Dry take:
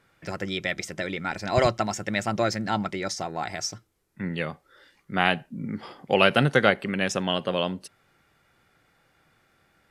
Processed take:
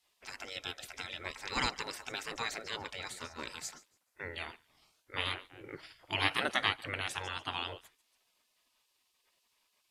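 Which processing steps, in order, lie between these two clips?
thinning echo 0.142 s, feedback 28%, high-pass 570 Hz, level -21.5 dB; spectral gate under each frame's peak -15 dB weak; gain -1 dB

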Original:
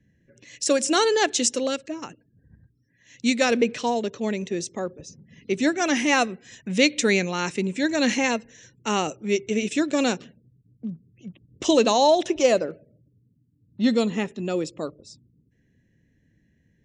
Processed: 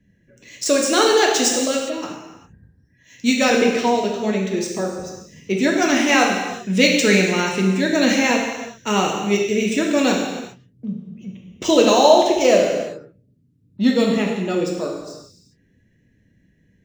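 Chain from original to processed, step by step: median filter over 3 samples; non-linear reverb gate 0.43 s falling, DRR -1.5 dB; gain +2 dB

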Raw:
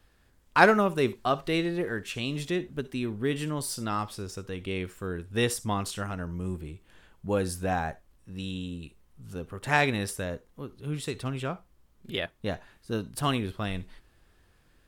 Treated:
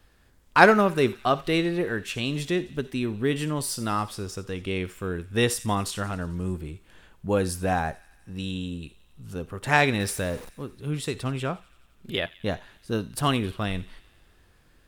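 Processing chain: 10–10.5 zero-crossing step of -41 dBFS; thin delay 88 ms, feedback 69%, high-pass 2000 Hz, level -19 dB; gain +3.5 dB

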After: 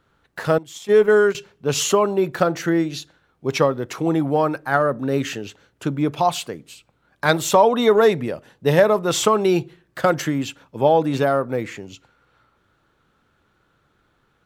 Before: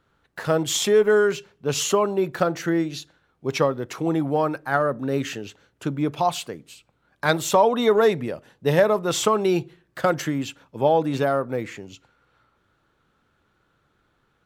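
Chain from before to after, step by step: 0.58–1.35 gate -20 dBFS, range -18 dB; gain +3 dB

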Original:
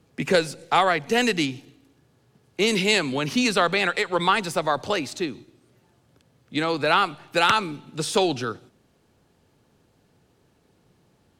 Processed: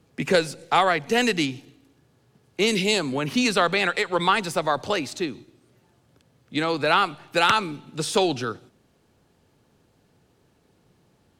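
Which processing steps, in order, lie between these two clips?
2.7–3.33 bell 840 Hz -> 6100 Hz -9.5 dB 0.87 oct

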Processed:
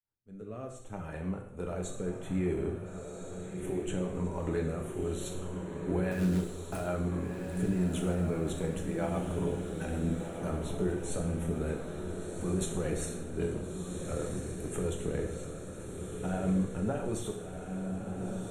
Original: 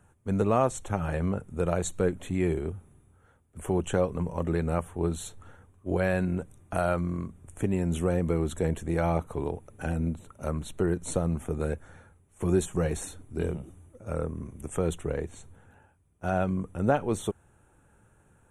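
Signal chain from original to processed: opening faded in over 2.85 s; limiter -20.5 dBFS, peak gain reduction 10 dB; 6.11–6.81 short-mantissa float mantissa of 2-bit; rotary speaker horn 0.6 Hz, later 7.5 Hz, at 4.42; diffused feedback echo 1.379 s, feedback 57%, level -5.5 dB; reverb, pre-delay 3 ms, DRR 1.5 dB; gain -2 dB

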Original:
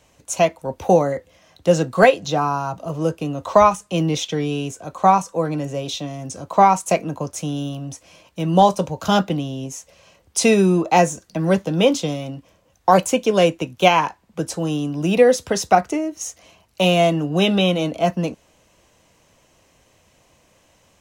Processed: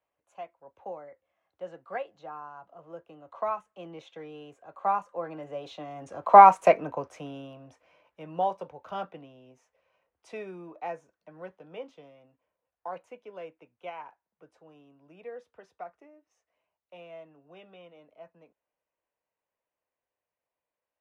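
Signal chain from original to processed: Doppler pass-by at 6.52, 13 m/s, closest 4.4 m; three-band isolator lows -15 dB, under 410 Hz, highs -24 dB, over 2500 Hz; gain +2.5 dB

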